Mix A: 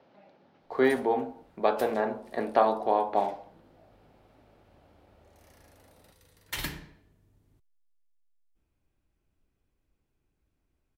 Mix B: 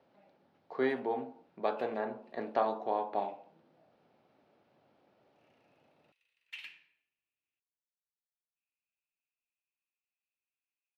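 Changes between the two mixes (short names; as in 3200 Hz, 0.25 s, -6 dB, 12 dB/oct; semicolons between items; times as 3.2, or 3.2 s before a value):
speech -7.5 dB; background: add band-pass 2600 Hz, Q 8.3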